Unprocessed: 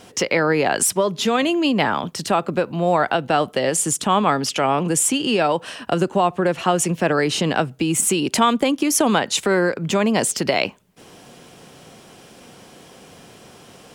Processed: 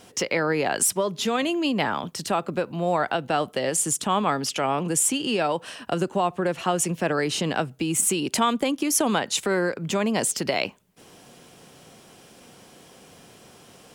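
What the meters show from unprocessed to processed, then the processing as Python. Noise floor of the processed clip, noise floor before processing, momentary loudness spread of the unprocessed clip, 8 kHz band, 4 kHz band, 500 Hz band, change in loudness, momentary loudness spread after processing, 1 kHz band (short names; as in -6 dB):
-51 dBFS, -46 dBFS, 4 LU, -3.0 dB, -4.5 dB, -5.5 dB, -5.0 dB, 5 LU, -5.5 dB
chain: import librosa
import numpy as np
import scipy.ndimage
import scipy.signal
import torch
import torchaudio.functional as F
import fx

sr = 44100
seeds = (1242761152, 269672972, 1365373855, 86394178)

y = fx.high_shelf(x, sr, hz=6900.0, db=4.5)
y = y * 10.0 ** (-5.5 / 20.0)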